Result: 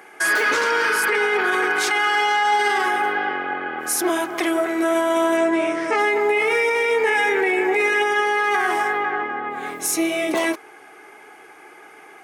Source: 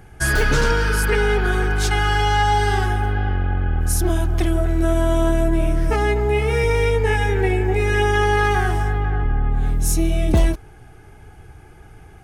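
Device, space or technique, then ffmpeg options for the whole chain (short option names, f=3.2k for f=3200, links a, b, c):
laptop speaker: -filter_complex "[0:a]asettb=1/sr,asplit=3[a][b][c];[a]atrim=end=5.374[d];[b]atrim=start=5.37:end=5.99,asetpts=PTS-STARTPTS,afade=t=in:d=0.004:c=qsin,afade=t=out:st=0.616:d=0.004:c=qsin,lowpass=f=8.4k:w=0.5412,lowpass=f=8.4k:w=1.3066[e];[c]atrim=start=5.986[f];[d][e]acrossfade=d=0.004:c1=hsin:c2=qsin[g];[g][f]acrossfade=d=0.004:c1=qsin:c2=hsin,highpass=f=320:w=0.5412,highpass=f=320:w=1.3066,equalizer=f=1.1k:t=o:w=0.44:g=7,equalizer=f=2.1k:t=o:w=0.48:g=8.5,alimiter=limit=-15.5dB:level=0:latency=1:release=27,volume=4dB"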